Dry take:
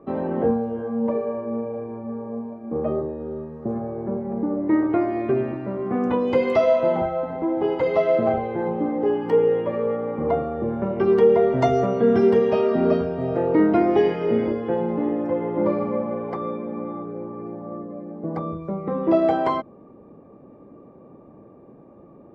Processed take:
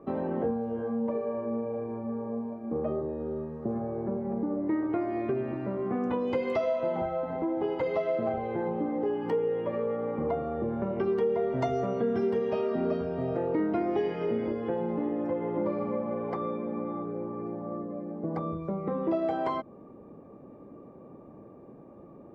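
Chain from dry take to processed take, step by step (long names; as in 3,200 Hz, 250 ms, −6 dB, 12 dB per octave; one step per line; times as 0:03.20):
downward compressor 2.5 to 1, threshold −27 dBFS, peak gain reduction 10.5 dB
level −2 dB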